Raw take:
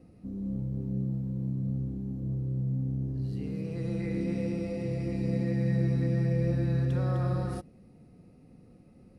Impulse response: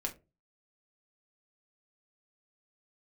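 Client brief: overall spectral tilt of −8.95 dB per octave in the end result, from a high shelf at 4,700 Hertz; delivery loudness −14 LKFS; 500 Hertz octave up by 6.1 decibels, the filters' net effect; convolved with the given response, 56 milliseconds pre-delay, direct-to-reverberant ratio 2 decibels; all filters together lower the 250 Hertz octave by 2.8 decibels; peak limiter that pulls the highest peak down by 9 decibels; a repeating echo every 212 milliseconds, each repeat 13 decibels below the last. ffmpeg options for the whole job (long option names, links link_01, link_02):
-filter_complex "[0:a]equalizer=frequency=250:width_type=o:gain=-7,equalizer=frequency=500:width_type=o:gain=8.5,highshelf=frequency=4700:gain=-7.5,alimiter=level_in=2.5dB:limit=-24dB:level=0:latency=1,volume=-2.5dB,aecho=1:1:212|424|636:0.224|0.0493|0.0108,asplit=2[link_01][link_02];[1:a]atrim=start_sample=2205,adelay=56[link_03];[link_02][link_03]afir=irnorm=-1:irlink=0,volume=-3dB[link_04];[link_01][link_04]amix=inputs=2:normalize=0,volume=19dB"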